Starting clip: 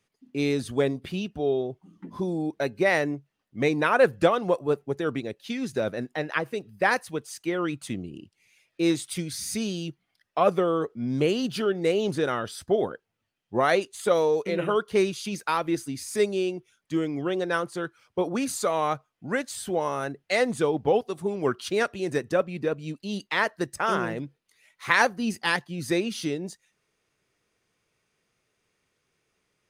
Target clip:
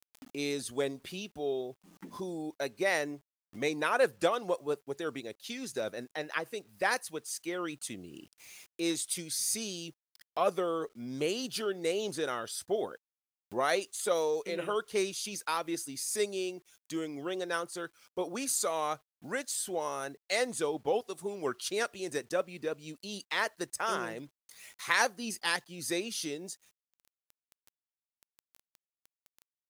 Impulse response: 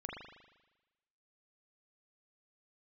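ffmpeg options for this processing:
-af "bass=frequency=250:gain=-9,treble=frequency=4000:gain=10,acrusher=bits=9:mix=0:aa=0.000001,acompressor=mode=upward:threshold=-32dB:ratio=2.5,volume=-7dB"

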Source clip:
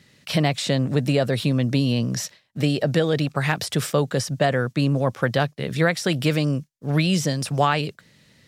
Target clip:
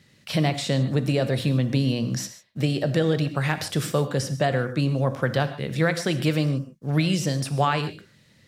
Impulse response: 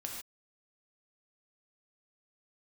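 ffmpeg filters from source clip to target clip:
-filter_complex "[0:a]asplit=2[link_01][link_02];[1:a]atrim=start_sample=2205,lowshelf=frequency=450:gain=4.5[link_03];[link_02][link_03]afir=irnorm=-1:irlink=0,volume=-3.5dB[link_04];[link_01][link_04]amix=inputs=2:normalize=0,volume=-6.5dB"

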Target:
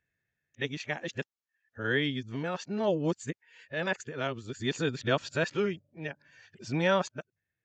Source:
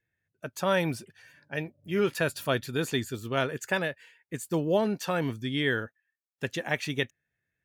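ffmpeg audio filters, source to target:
ffmpeg -i in.wav -af "areverse,tremolo=f=0.59:d=0.46,aresample=16000,aresample=44100" out.wav

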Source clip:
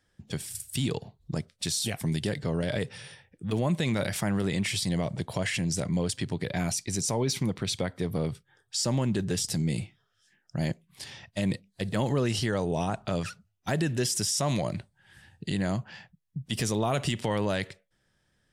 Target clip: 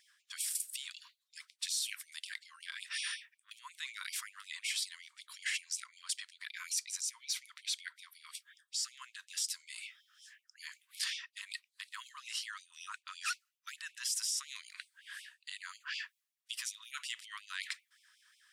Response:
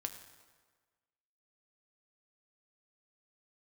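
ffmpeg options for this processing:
-af "areverse,acompressor=threshold=-41dB:ratio=12,areverse,afftfilt=real='re*gte(b*sr/1024,930*pow(2200/930,0.5+0.5*sin(2*PI*5.4*pts/sr)))':imag='im*gte(b*sr/1024,930*pow(2200/930,0.5+0.5*sin(2*PI*5.4*pts/sr)))':win_size=1024:overlap=0.75,volume=9.5dB"

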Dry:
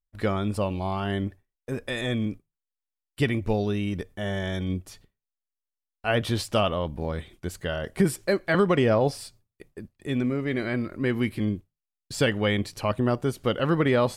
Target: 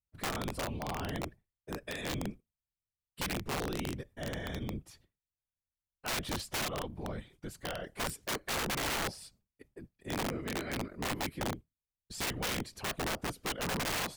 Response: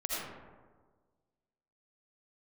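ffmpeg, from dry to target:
-af "afftfilt=real='hypot(re,im)*cos(2*PI*random(0))':imag='hypot(re,im)*sin(2*PI*random(1))':win_size=512:overlap=0.75,aeval=exprs='(mod(18.8*val(0)+1,2)-1)/18.8':channel_layout=same,volume=-3dB"

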